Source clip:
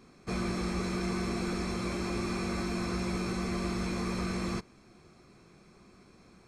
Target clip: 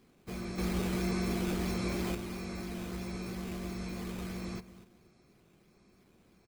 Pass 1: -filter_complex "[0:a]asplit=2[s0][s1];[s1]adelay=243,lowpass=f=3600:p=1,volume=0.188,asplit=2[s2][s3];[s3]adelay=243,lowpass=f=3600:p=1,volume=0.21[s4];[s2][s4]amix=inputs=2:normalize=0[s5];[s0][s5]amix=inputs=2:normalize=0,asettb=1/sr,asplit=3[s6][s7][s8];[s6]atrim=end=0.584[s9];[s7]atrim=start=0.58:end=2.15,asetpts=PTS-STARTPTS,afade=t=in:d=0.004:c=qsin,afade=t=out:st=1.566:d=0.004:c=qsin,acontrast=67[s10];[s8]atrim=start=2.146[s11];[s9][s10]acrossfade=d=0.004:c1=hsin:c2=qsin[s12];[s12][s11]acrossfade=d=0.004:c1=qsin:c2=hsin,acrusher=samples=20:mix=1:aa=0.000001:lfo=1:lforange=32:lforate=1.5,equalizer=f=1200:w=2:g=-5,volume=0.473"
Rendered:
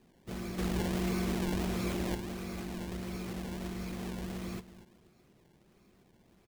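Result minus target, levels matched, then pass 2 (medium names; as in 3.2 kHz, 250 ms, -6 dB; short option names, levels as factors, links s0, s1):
decimation with a swept rate: distortion +7 dB
-filter_complex "[0:a]asplit=2[s0][s1];[s1]adelay=243,lowpass=f=3600:p=1,volume=0.188,asplit=2[s2][s3];[s3]adelay=243,lowpass=f=3600:p=1,volume=0.21[s4];[s2][s4]amix=inputs=2:normalize=0[s5];[s0][s5]amix=inputs=2:normalize=0,asettb=1/sr,asplit=3[s6][s7][s8];[s6]atrim=end=0.584[s9];[s7]atrim=start=0.58:end=2.15,asetpts=PTS-STARTPTS,afade=t=in:d=0.004:c=qsin,afade=t=out:st=1.566:d=0.004:c=qsin,acontrast=67[s10];[s8]atrim=start=2.146[s11];[s9][s10]acrossfade=d=0.004:c1=hsin:c2=qsin[s12];[s12][s11]acrossfade=d=0.004:c1=qsin:c2=hsin,acrusher=samples=5:mix=1:aa=0.000001:lfo=1:lforange=8:lforate=1.5,equalizer=f=1200:w=2:g=-5,volume=0.473"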